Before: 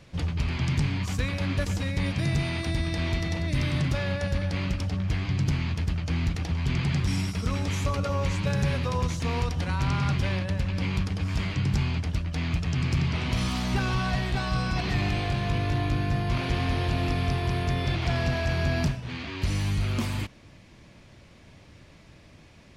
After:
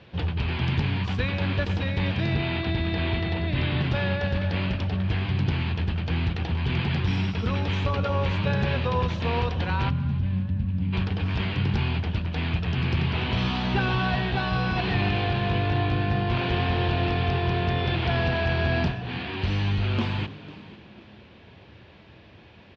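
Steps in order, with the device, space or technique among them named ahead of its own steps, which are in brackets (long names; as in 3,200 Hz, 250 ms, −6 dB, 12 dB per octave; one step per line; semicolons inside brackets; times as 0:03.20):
0:02.34–0:03.82: inverse Chebyshev low-pass filter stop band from 8,500 Hz, stop band 40 dB
frequency-shifting delay pedal into a guitar cabinet (echo with shifted repeats 498 ms, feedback 31%, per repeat +55 Hz, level −18 dB; loudspeaker in its box 82–3,500 Hz, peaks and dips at 150 Hz −9 dB, 270 Hz −8 dB, 600 Hz −5 dB, 1,200 Hz −6 dB, 2,100 Hz −7 dB)
0:09.90–0:10.93: gain on a spectral selection 290–9,400 Hz −18 dB
low-shelf EQ 130 Hz −3 dB
echo with shifted repeats 291 ms, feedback 43%, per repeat +48 Hz, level −20 dB
level +7 dB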